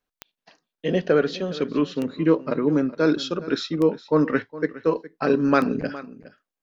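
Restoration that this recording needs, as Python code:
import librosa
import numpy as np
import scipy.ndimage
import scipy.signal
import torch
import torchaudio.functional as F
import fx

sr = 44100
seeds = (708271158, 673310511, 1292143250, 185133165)

y = fx.fix_declick_ar(x, sr, threshold=10.0)
y = fx.fix_echo_inverse(y, sr, delay_ms=413, level_db=-17.0)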